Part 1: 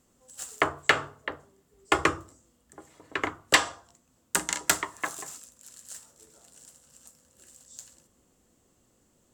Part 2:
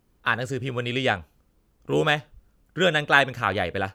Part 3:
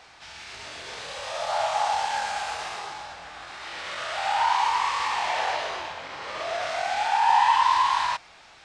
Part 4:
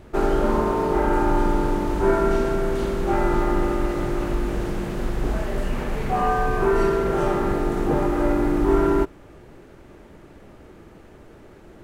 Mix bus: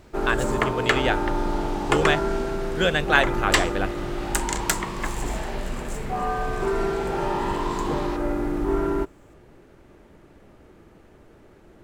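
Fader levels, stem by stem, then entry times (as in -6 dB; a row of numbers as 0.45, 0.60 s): -0.5, -1.0, -11.0, -5.0 dB; 0.00, 0.00, 0.00, 0.00 s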